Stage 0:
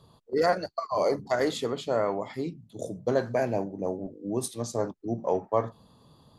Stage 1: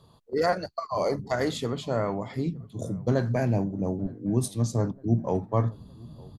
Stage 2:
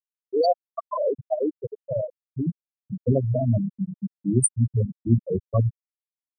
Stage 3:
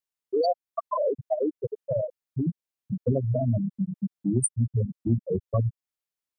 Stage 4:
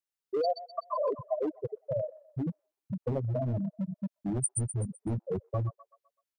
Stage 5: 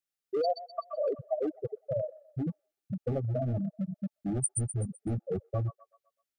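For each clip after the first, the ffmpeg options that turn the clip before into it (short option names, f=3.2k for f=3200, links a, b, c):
-filter_complex "[0:a]asubboost=boost=6:cutoff=210,asplit=2[a][b];[b]adelay=912,lowpass=f=1.2k:p=1,volume=-23.5dB,asplit=2[c][d];[d]adelay=912,lowpass=f=1.2k:p=1,volume=0.54,asplit=2[e][f];[f]adelay=912,lowpass=f=1.2k:p=1,volume=0.54,asplit=2[g][h];[h]adelay=912,lowpass=f=1.2k:p=1,volume=0.54[i];[a][c][e][g][i]amix=inputs=5:normalize=0"
-af "aemphasis=mode=production:type=75fm,afftfilt=real='re*gte(hypot(re,im),0.282)':imag='im*gte(hypot(re,im),0.282)':win_size=1024:overlap=0.75,volume=5.5dB"
-af "acompressor=threshold=-30dB:ratio=2,volume=3.5dB"
-filter_complex "[0:a]acrossover=split=570|760[a][b][c];[a]asoftclip=type=hard:threshold=-23.5dB[d];[c]aecho=1:1:127|254|381|508|635:0.668|0.281|0.118|0.0495|0.0208[e];[d][b][e]amix=inputs=3:normalize=0,volume=-4.5dB"
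-af "asuperstop=centerf=990:order=20:qfactor=3.8"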